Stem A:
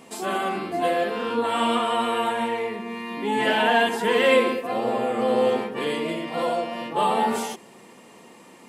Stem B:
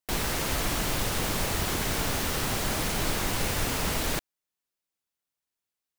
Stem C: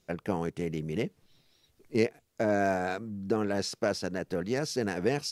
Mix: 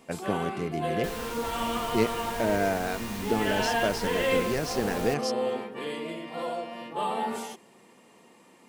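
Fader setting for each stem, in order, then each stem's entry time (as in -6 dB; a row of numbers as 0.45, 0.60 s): -8.0, -10.5, +0.5 dB; 0.00, 0.95, 0.00 s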